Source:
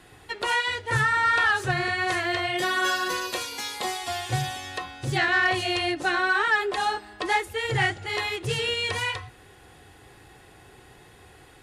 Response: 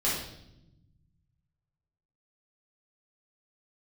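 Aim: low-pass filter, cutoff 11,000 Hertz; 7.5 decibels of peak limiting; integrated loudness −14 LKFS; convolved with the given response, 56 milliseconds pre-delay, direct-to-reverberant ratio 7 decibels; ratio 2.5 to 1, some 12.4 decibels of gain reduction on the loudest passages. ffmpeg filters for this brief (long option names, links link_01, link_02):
-filter_complex "[0:a]lowpass=11000,acompressor=threshold=-38dB:ratio=2.5,alimiter=level_in=4.5dB:limit=-24dB:level=0:latency=1,volume=-4.5dB,asplit=2[link_01][link_02];[1:a]atrim=start_sample=2205,adelay=56[link_03];[link_02][link_03]afir=irnorm=-1:irlink=0,volume=-16.5dB[link_04];[link_01][link_04]amix=inputs=2:normalize=0,volume=22dB"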